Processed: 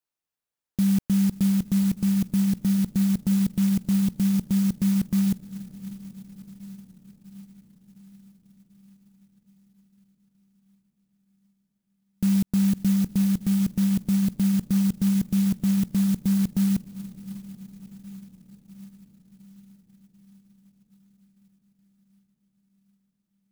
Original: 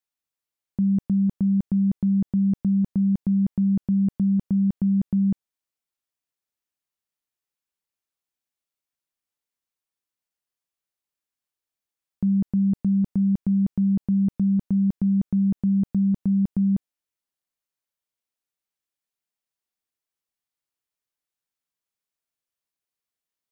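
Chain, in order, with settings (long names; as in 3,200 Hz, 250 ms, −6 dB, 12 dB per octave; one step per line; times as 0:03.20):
feedback delay with all-pass diffusion 630 ms, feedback 64%, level −14 dB
converter with an unsteady clock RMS 0.1 ms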